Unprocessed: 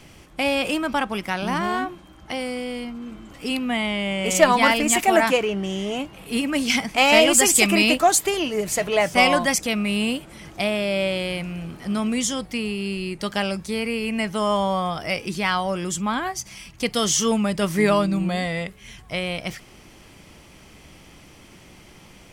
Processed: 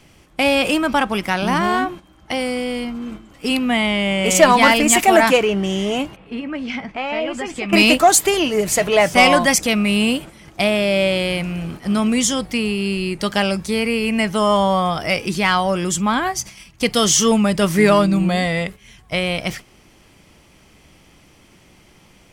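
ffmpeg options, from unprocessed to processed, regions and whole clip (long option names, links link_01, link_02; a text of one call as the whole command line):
ffmpeg -i in.wav -filter_complex "[0:a]asettb=1/sr,asplit=3[link_01][link_02][link_03];[link_01]atrim=end=6.164[link_04];[link_02]atrim=start=6.16:end=7.73,asetpts=PTS-STARTPTS,afade=type=in:duration=0.004:curve=qsin,afade=type=out:start_time=1.566:duration=0.004:curve=qsin,lowpass=2300,acompressor=threshold=-37dB:ratio=2:attack=3.2:release=140:knee=1:detection=peak,asplit=2[link_05][link_06];[link_06]adelay=16,volume=-13dB[link_07];[link_05][link_07]amix=inputs=2:normalize=0,atrim=end_sample=69237[link_08];[link_03]atrim=start=7.726[link_09];[link_04][link_08]acrossfade=duration=0.004:curve1=hsin:curve2=qsin[link_10];[link_10][link_09]acrossfade=duration=0.004:curve1=qsin:curve2=hsin,agate=range=-9dB:threshold=-38dB:ratio=16:detection=peak,acontrast=56" out.wav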